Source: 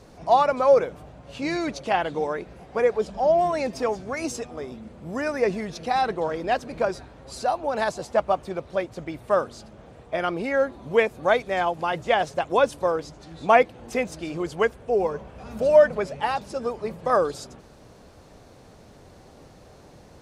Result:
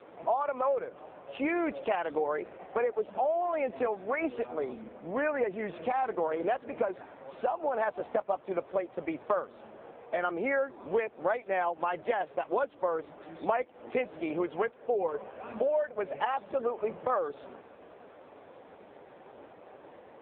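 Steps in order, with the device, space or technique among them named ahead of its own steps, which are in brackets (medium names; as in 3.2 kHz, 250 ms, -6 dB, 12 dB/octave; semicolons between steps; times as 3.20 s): voicemail (band-pass 350–2700 Hz; compression 10:1, threshold -29 dBFS, peak gain reduction 18.5 dB; trim +4 dB; AMR-NB 5.9 kbps 8 kHz)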